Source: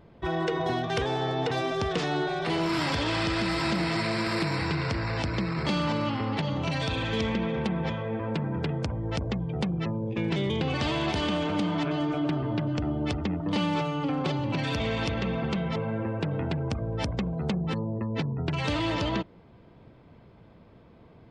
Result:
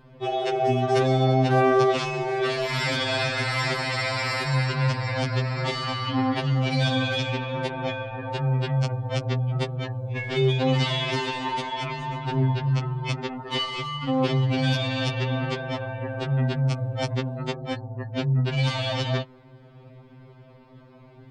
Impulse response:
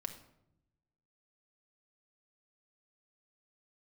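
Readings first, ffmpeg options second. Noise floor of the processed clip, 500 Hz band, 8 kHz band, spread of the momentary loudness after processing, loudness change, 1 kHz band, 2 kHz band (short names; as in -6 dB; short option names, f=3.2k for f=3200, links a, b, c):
-50 dBFS, +4.5 dB, +4.0 dB, 9 LU, +3.5 dB, +4.0 dB, +4.0 dB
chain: -af "acontrast=60,afftfilt=real='re*2.45*eq(mod(b,6),0)':imag='im*2.45*eq(mod(b,6),0)':win_size=2048:overlap=0.75"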